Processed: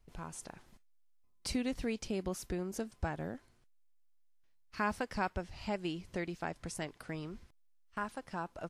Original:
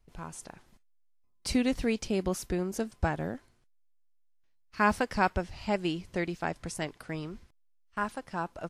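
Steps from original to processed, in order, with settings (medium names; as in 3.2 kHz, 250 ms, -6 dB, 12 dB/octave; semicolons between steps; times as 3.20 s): compression 1.5:1, threshold -45 dBFS, peak gain reduction 9.5 dB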